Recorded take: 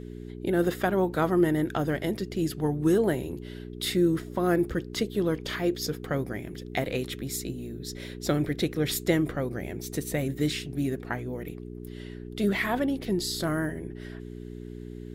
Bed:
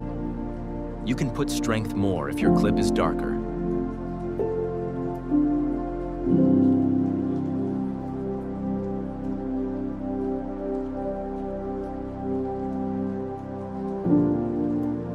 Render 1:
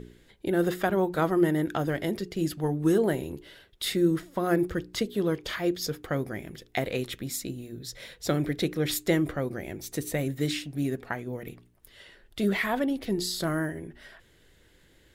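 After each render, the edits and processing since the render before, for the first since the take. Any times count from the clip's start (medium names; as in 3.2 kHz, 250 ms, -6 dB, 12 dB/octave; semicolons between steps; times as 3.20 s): de-hum 60 Hz, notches 7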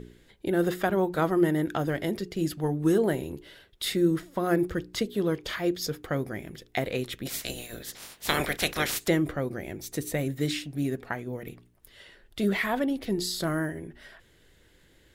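7.25–9.07 s: spectral peaks clipped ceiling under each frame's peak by 28 dB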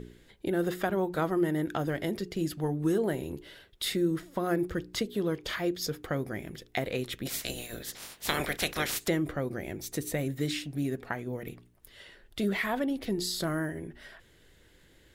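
compression 1.5:1, threshold -31 dBFS, peak gain reduction 5 dB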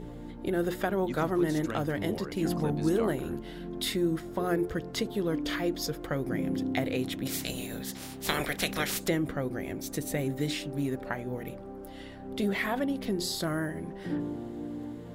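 add bed -12.5 dB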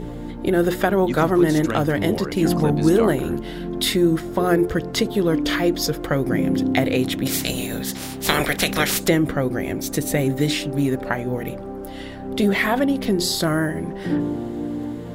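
trim +10.5 dB; peak limiter -2 dBFS, peak gain reduction 2 dB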